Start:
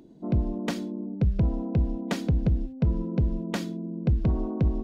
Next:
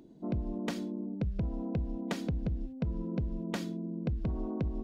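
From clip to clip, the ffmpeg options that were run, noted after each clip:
ffmpeg -i in.wav -af "acompressor=threshold=-26dB:ratio=6,volume=-3.5dB" out.wav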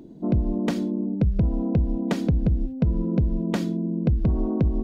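ffmpeg -i in.wav -af "tiltshelf=frequency=670:gain=3.5,volume=8.5dB" out.wav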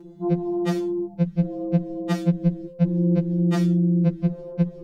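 ffmpeg -i in.wav -af "afftfilt=real='re*2.83*eq(mod(b,8),0)':imag='im*2.83*eq(mod(b,8),0)':win_size=2048:overlap=0.75,volume=3.5dB" out.wav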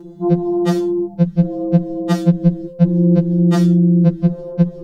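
ffmpeg -i in.wav -af "equalizer=frequency=2300:width=2.8:gain=-7,volume=7.5dB" out.wav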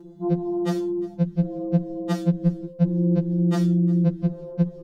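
ffmpeg -i in.wav -af "aecho=1:1:356:0.0794,volume=-8dB" out.wav

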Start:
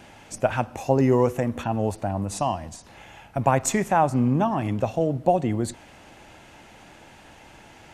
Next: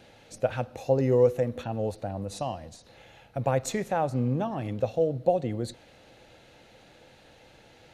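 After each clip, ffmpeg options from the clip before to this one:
ffmpeg -i in.wav -af "equalizer=frequency=125:width_type=o:width=0.33:gain=5,equalizer=frequency=500:width_type=o:width=0.33:gain=11,equalizer=frequency=1000:width_type=o:width=0.33:gain=-6,equalizer=frequency=4000:width_type=o:width=0.33:gain=10,equalizer=frequency=8000:width_type=o:width=0.33:gain=-4,volume=-8dB" out.wav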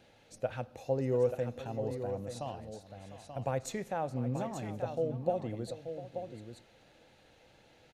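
ffmpeg -i in.wav -af "aecho=1:1:700|883:0.178|0.376,volume=-8dB" out.wav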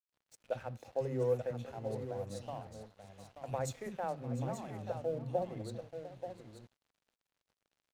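ffmpeg -i in.wav -filter_complex "[0:a]acrossover=split=280|2500[link_01][link_02][link_03];[link_02]adelay=70[link_04];[link_01]adelay=120[link_05];[link_05][link_04][link_03]amix=inputs=3:normalize=0,aeval=exprs='sgn(val(0))*max(abs(val(0))-0.0015,0)':channel_layout=same,volume=-2dB" out.wav

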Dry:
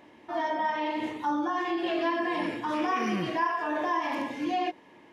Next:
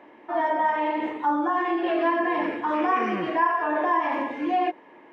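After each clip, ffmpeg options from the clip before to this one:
ffmpeg -i in.wav -filter_complex "[0:a]acrossover=split=250 2500:gain=0.158 1 0.112[link_01][link_02][link_03];[link_01][link_02][link_03]amix=inputs=3:normalize=0,volume=6dB" out.wav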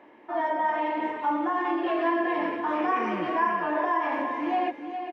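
ffmpeg -i in.wav -af "aecho=1:1:312|407:0.126|0.398,volume=-3dB" out.wav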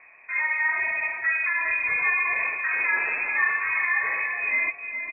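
ffmpeg -i in.wav -af "lowpass=frequency=2400:width_type=q:width=0.5098,lowpass=frequency=2400:width_type=q:width=0.6013,lowpass=frequency=2400:width_type=q:width=0.9,lowpass=frequency=2400:width_type=q:width=2.563,afreqshift=-2800,volume=1.5dB" out.wav

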